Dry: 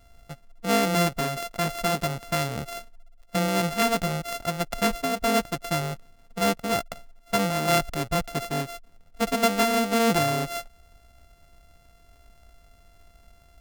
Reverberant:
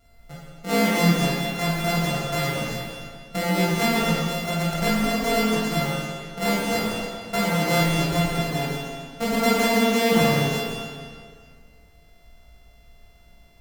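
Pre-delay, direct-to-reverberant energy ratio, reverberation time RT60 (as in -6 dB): 18 ms, -7.5 dB, 2.0 s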